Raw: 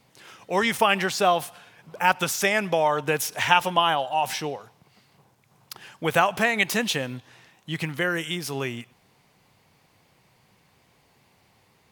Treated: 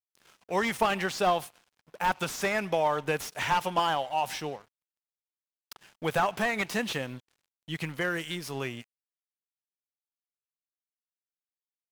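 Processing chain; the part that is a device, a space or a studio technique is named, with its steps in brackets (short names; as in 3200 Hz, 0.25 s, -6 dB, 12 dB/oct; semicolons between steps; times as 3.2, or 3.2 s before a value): early transistor amplifier (crossover distortion -46 dBFS; slew limiter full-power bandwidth 170 Hz); gain -4 dB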